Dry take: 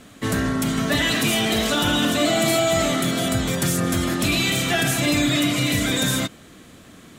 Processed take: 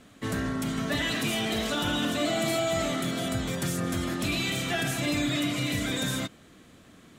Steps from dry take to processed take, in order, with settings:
high-shelf EQ 6,800 Hz −4.5 dB
level −7.5 dB

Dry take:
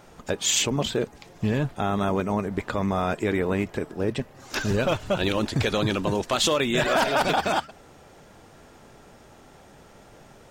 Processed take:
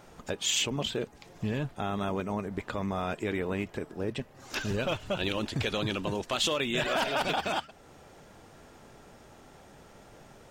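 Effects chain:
dynamic equaliser 2,900 Hz, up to +6 dB, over −43 dBFS, Q 2.3
in parallel at −0.5 dB: downward compressor, threshold −38 dBFS, peak gain reduction 19.5 dB
on the sum: floating-point word with a short mantissa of 8 bits
level −8.5 dB

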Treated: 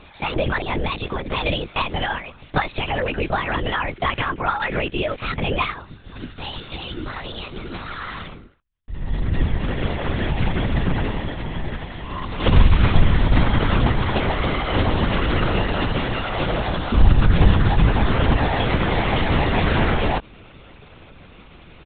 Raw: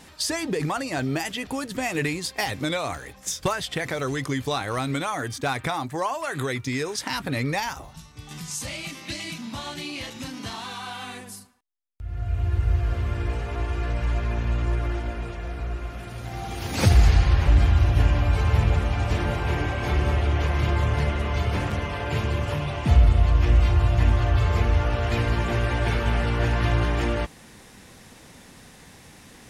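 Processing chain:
comb filter 4.9 ms, depth 48%
wrong playback speed 33 rpm record played at 45 rpm
linear-prediction vocoder at 8 kHz whisper
level +4 dB

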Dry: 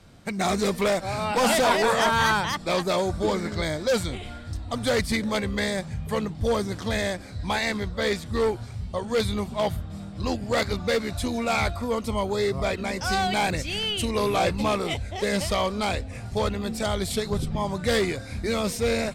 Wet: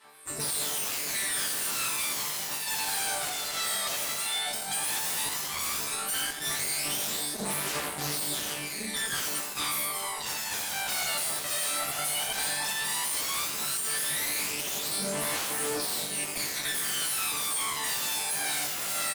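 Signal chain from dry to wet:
automatic gain control gain up to 15.5 dB
soft clipping −3 dBFS, distortion −23 dB
gate on every frequency bin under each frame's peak −20 dB weak
high shelf with overshoot 8,000 Hz +6.5 dB, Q 3
downward compressor 2.5 to 1, threshold −30 dBFS, peak gain reduction 12.5 dB
on a send: repeating echo 88 ms, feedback 44%, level −7.5 dB
on the sum: phase shifter 0.13 Hz, delay 1.6 ms, feedback 79%
resonators tuned to a chord D3 sus4, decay 0.69 s
in parallel at −3.5 dB: sine wavefolder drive 17 dB, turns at −27.5 dBFS
on the sum: high-pass filter 180 Hz 6 dB per octave
level +3 dB

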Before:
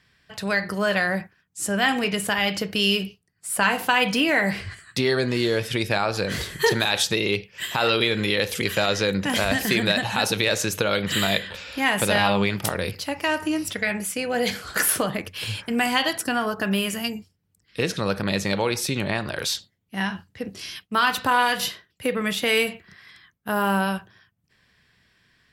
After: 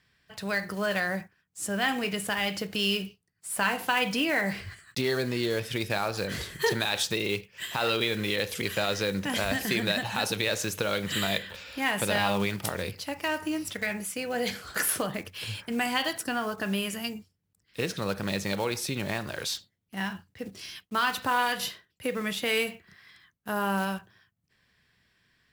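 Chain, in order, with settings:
one scale factor per block 5 bits
level −6 dB

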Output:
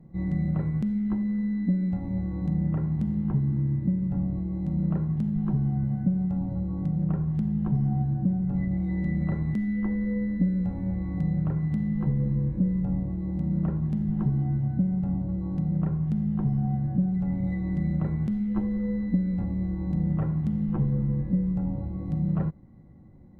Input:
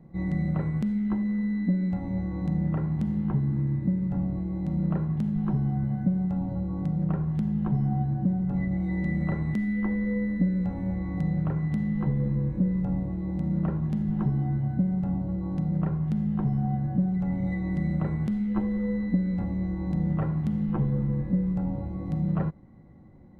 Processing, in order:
low-shelf EQ 330 Hz +7 dB
level −5 dB

